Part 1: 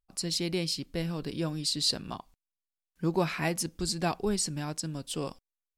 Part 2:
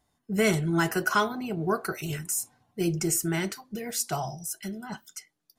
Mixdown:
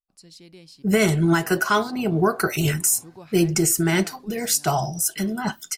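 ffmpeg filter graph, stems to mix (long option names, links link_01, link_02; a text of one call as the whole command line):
ffmpeg -i stem1.wav -i stem2.wav -filter_complex "[0:a]volume=-16dB,asplit=2[link_01][link_02];[1:a]dynaudnorm=framelen=160:gausssize=3:maxgain=13.5dB,adelay=550,volume=-1.5dB[link_03];[link_02]apad=whole_len=270386[link_04];[link_03][link_04]sidechaincompress=threshold=-46dB:ratio=4:attack=16:release=109[link_05];[link_01][link_05]amix=inputs=2:normalize=0,alimiter=limit=-8dB:level=0:latency=1:release=160" out.wav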